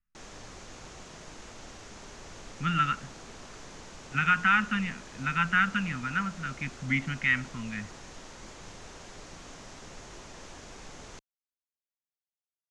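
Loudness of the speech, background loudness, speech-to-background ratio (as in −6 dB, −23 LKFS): −28.5 LKFS, −46.5 LKFS, 18.0 dB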